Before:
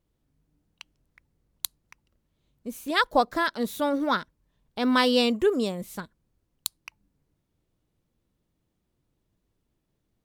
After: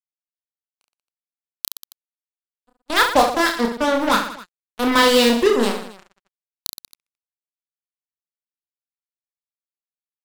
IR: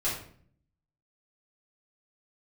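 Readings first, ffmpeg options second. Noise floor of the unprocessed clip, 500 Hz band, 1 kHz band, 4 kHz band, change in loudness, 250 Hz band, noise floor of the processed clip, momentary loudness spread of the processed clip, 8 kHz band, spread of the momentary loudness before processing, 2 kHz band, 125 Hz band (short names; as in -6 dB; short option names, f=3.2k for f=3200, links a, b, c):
-77 dBFS, +7.5 dB, +7.5 dB, +8.0 dB, +8.5 dB, +5.0 dB, under -85 dBFS, 18 LU, +9.0 dB, 17 LU, +8.0 dB, n/a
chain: -af "acrusher=bits=3:mix=0:aa=0.5,agate=range=-23dB:threshold=-37dB:ratio=16:detection=peak,aecho=1:1:30|69|119.7|185.6|271.3:0.631|0.398|0.251|0.158|0.1,volume=5dB"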